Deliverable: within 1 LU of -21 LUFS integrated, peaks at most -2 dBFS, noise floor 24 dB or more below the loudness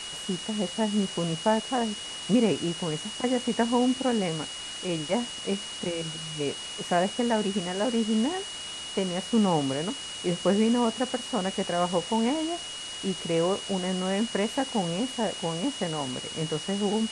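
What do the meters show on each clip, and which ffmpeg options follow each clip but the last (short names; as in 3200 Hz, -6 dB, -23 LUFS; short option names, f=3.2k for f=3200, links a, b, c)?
steady tone 2900 Hz; tone level -37 dBFS; noise floor -38 dBFS; noise floor target -52 dBFS; loudness -28.0 LUFS; peak -9.5 dBFS; loudness target -21.0 LUFS
-> -af "bandreject=f=2.9k:w=30"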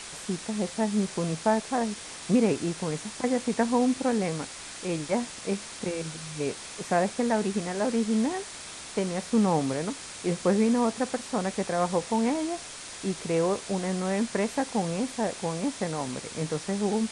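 steady tone none; noise floor -42 dBFS; noise floor target -53 dBFS
-> -af "afftdn=nr=11:nf=-42"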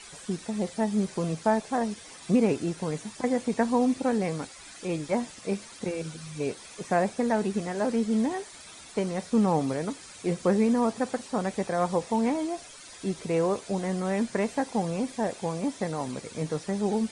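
noise floor -47 dBFS; noise floor target -53 dBFS
-> -af "afftdn=nr=6:nf=-47"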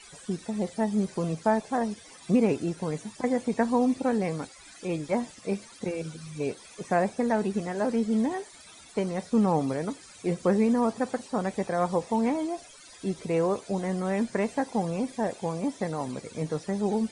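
noise floor -50 dBFS; noise floor target -53 dBFS
-> -af "afftdn=nr=6:nf=-50"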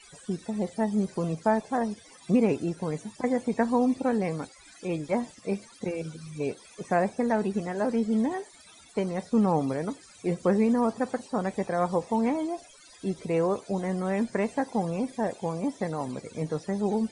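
noise floor -53 dBFS; loudness -29.0 LUFS; peak -10.5 dBFS; loudness target -21.0 LUFS
-> -af "volume=8dB"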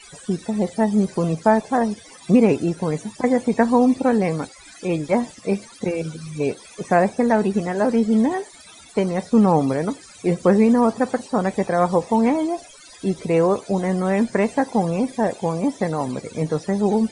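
loudness -21.0 LUFS; peak -2.5 dBFS; noise floor -45 dBFS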